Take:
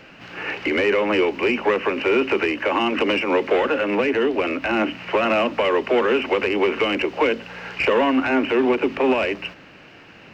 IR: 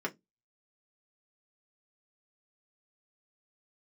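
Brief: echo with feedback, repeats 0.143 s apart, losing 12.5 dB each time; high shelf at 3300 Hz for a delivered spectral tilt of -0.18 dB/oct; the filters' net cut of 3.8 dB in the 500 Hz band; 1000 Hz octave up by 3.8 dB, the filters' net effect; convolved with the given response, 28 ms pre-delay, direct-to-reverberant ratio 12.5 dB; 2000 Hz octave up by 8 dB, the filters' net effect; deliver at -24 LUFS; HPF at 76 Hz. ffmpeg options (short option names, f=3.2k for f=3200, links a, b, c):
-filter_complex "[0:a]highpass=76,equalizer=f=500:t=o:g=-6,equalizer=f=1k:t=o:g=3.5,equalizer=f=2k:t=o:g=7,highshelf=f=3.3k:g=7,aecho=1:1:143|286|429:0.237|0.0569|0.0137,asplit=2[a][b];[1:a]atrim=start_sample=2205,adelay=28[c];[b][c]afir=irnorm=-1:irlink=0,volume=-17.5dB[d];[a][d]amix=inputs=2:normalize=0,volume=-7dB"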